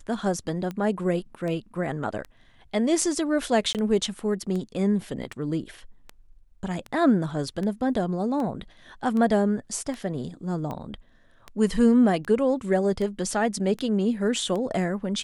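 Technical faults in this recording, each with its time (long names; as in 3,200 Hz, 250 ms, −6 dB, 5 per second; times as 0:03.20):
scratch tick 78 rpm −21 dBFS
0:03.73–0:03.75: drop-out 18 ms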